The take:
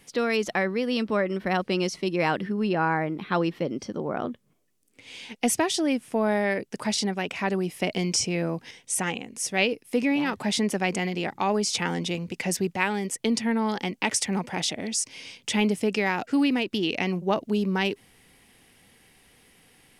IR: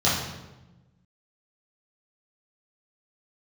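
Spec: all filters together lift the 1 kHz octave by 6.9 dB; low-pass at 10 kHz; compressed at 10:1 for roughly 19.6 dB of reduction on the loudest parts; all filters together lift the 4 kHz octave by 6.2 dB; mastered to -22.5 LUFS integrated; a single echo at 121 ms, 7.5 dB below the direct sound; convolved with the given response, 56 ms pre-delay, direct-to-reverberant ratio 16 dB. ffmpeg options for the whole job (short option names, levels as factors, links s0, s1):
-filter_complex "[0:a]lowpass=10000,equalizer=f=1000:t=o:g=8.5,equalizer=f=4000:t=o:g=8,acompressor=threshold=0.0178:ratio=10,aecho=1:1:121:0.422,asplit=2[s0][s1];[1:a]atrim=start_sample=2205,adelay=56[s2];[s1][s2]afir=irnorm=-1:irlink=0,volume=0.0251[s3];[s0][s3]amix=inputs=2:normalize=0,volume=5.62"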